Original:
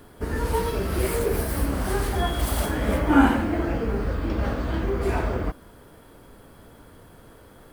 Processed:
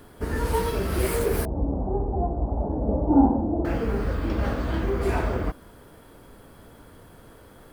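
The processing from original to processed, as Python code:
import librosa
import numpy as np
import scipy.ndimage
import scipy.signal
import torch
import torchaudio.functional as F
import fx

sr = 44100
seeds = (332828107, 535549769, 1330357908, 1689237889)

y = fx.ellip_lowpass(x, sr, hz=840.0, order=4, stop_db=80, at=(1.45, 3.65))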